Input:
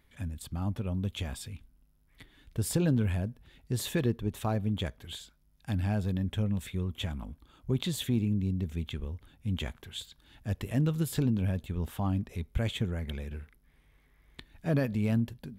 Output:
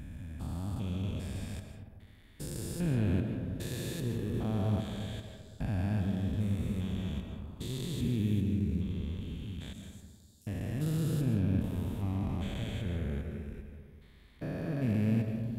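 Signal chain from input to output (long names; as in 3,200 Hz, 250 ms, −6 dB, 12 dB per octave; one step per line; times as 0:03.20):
spectrum averaged block by block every 400 ms
0:09.73–0:10.47: inverse Chebyshev high-pass filter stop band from 1,200 Hz, stop band 70 dB
on a send at −4.5 dB: convolution reverb RT60 1.6 s, pre-delay 100 ms
on the sum: every ending faded ahead of time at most 270 dB per second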